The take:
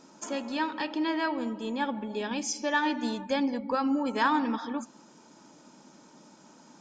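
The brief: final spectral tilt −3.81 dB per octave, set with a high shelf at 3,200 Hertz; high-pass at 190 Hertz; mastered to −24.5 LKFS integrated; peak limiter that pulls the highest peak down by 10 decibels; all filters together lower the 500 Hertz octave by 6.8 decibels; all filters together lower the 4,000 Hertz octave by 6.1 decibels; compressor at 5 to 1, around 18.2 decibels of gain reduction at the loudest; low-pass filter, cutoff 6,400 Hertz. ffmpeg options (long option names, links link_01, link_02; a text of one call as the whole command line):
ffmpeg -i in.wav -af "highpass=190,lowpass=6400,equalizer=frequency=500:width_type=o:gain=-8,highshelf=frequency=3200:gain=-4.5,equalizer=frequency=4000:width_type=o:gain=-4,acompressor=threshold=-45dB:ratio=5,volume=27dB,alimiter=limit=-16dB:level=0:latency=1" out.wav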